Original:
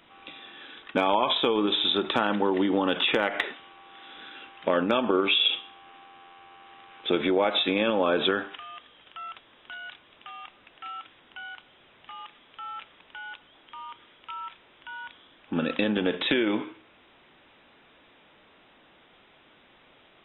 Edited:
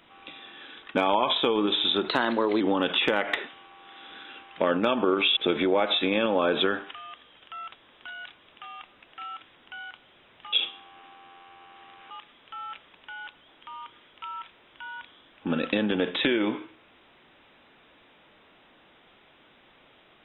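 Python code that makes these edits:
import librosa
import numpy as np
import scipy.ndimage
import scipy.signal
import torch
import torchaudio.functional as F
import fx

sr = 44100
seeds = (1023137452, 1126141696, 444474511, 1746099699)

y = fx.edit(x, sr, fx.speed_span(start_s=2.08, length_s=0.59, speed=1.12),
    fx.move(start_s=5.43, length_s=1.58, to_s=12.17), tone=tone)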